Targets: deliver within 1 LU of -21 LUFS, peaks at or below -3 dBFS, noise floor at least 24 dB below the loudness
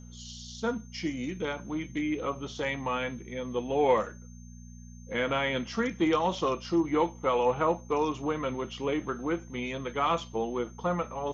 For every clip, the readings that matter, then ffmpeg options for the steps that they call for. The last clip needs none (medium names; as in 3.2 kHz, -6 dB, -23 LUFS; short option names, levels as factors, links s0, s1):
hum 60 Hz; highest harmonic 240 Hz; hum level -45 dBFS; steady tone 6.3 kHz; tone level -57 dBFS; loudness -30.5 LUFS; peak level -13.0 dBFS; loudness target -21.0 LUFS
-> -af "bandreject=f=60:t=h:w=4,bandreject=f=120:t=h:w=4,bandreject=f=180:t=h:w=4,bandreject=f=240:t=h:w=4"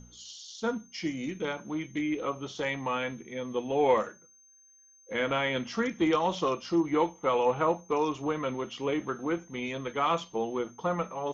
hum not found; steady tone 6.3 kHz; tone level -57 dBFS
-> -af "bandreject=f=6300:w=30"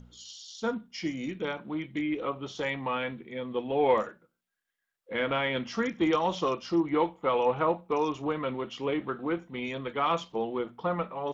steady tone not found; loudness -30.5 LUFS; peak level -13.0 dBFS; loudness target -21.0 LUFS
-> -af "volume=2.99"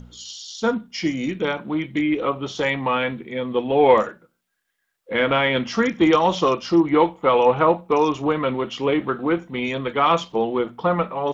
loudness -21.0 LUFS; peak level -3.5 dBFS; noise floor -74 dBFS